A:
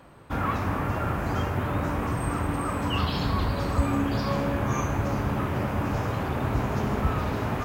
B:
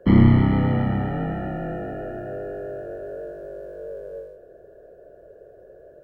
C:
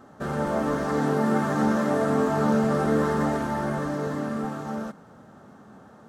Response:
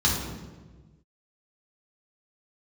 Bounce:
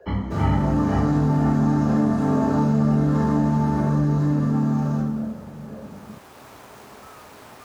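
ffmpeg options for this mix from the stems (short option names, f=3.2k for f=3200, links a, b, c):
-filter_complex "[0:a]acrossover=split=340|3000[a][b][c];[a]acompressor=threshold=-31dB:ratio=6[d];[d][b][c]amix=inputs=3:normalize=0,lowshelf=f=170:g=-12,acrusher=bits=5:mix=0:aa=0.000001,volume=-12.5dB,afade=t=in:st=5.78:d=0.72:silence=0.375837[e];[1:a]lowshelf=f=420:t=q:w=1.5:g=-11.5,aeval=exprs='val(0)*pow(10,-32*(0.5-0.5*cos(2*PI*2.1*n/s))/20)':c=same,volume=0.5dB,asplit=2[f][g];[g]volume=-6dB[h];[2:a]adelay=100,volume=-4.5dB,asplit=2[i][j];[j]volume=-8dB[k];[3:a]atrim=start_sample=2205[l];[h][k]amix=inputs=2:normalize=0[m];[m][l]afir=irnorm=-1:irlink=0[n];[e][f][i][n]amix=inputs=4:normalize=0,acompressor=threshold=-18dB:ratio=3"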